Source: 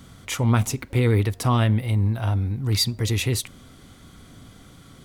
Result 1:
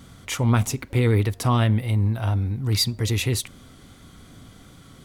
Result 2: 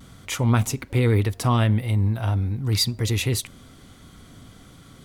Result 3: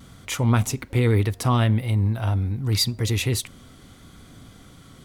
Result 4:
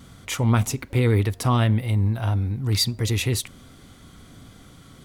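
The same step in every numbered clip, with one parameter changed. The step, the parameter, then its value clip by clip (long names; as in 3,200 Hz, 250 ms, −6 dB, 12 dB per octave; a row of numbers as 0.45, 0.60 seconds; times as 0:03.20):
pitch vibrato, speed: 2.6, 0.41, 0.76, 1.4 Hertz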